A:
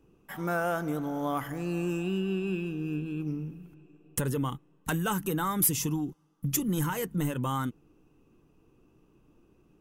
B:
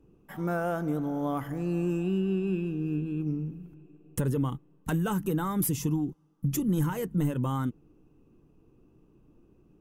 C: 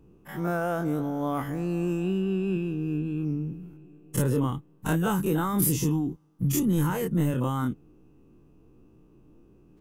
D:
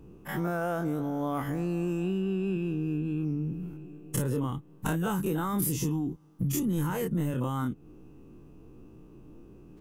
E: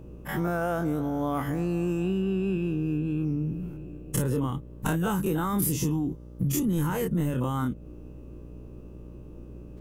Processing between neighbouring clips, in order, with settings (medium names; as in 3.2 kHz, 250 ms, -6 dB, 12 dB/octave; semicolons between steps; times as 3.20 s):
tilt shelf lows +5 dB, about 770 Hz; trim -1.5 dB
every event in the spectrogram widened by 60 ms
compression 3:1, threshold -35 dBFS, peak gain reduction 11 dB; trim +5.5 dB
mains buzz 60 Hz, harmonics 10, -47 dBFS -6 dB/octave; trim +2.5 dB